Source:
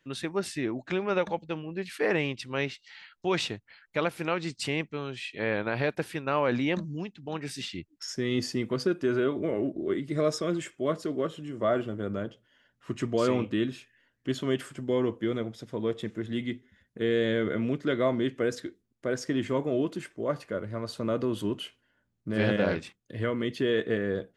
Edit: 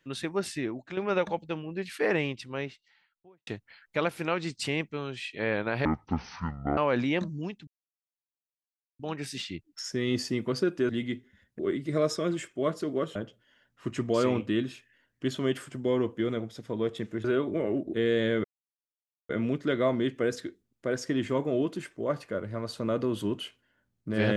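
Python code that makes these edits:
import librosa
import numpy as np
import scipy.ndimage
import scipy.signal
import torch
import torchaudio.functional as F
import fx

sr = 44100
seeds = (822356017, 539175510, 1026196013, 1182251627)

y = fx.studio_fade_out(x, sr, start_s=2.06, length_s=1.41)
y = fx.edit(y, sr, fx.fade_out_to(start_s=0.54, length_s=0.43, floor_db=-10.0),
    fx.speed_span(start_s=5.85, length_s=0.48, speed=0.52),
    fx.insert_silence(at_s=7.23, length_s=1.32),
    fx.swap(start_s=9.13, length_s=0.69, other_s=16.28, other_length_s=0.7),
    fx.cut(start_s=11.38, length_s=0.81),
    fx.insert_silence(at_s=17.49, length_s=0.85), tone=tone)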